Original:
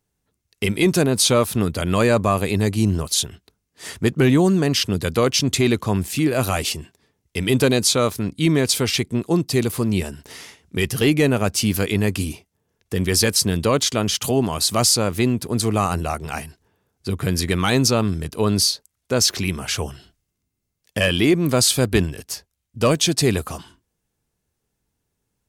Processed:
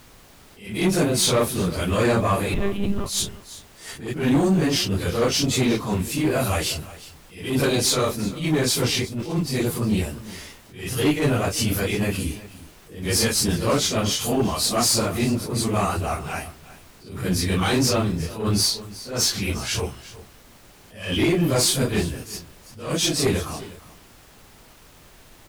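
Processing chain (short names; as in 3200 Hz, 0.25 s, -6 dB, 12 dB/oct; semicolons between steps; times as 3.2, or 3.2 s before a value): phase scrambler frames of 0.1 s; tube stage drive 13 dB, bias 0.3; 2.54–3.06 monotone LPC vocoder at 8 kHz 200 Hz; on a send: echo 0.362 s -17.5 dB; on the sum: added noise pink -49 dBFS; attack slew limiter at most 110 dB/s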